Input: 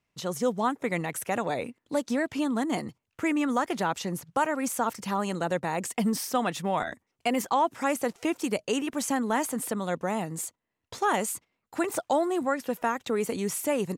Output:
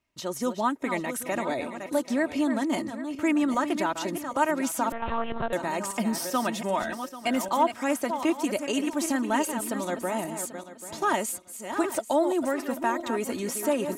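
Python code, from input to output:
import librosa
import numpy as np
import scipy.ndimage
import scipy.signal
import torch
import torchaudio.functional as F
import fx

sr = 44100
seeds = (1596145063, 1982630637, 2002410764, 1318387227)

y = fx.reverse_delay_fb(x, sr, ms=394, feedback_pct=46, wet_db=-8.5)
y = y + 0.55 * np.pad(y, (int(3.2 * sr / 1000.0), 0))[:len(y)]
y = fx.lpc_monotone(y, sr, seeds[0], pitch_hz=230.0, order=10, at=(4.92, 5.53))
y = F.gain(torch.from_numpy(y), -1.0).numpy()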